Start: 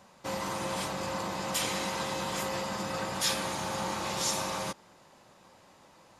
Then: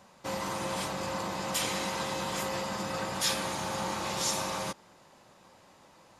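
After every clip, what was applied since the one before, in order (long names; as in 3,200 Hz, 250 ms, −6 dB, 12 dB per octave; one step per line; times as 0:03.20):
no processing that can be heard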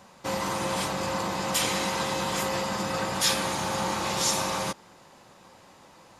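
notch filter 610 Hz, Q 20
level +5 dB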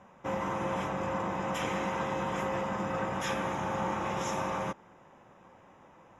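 moving average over 10 samples
level −2.5 dB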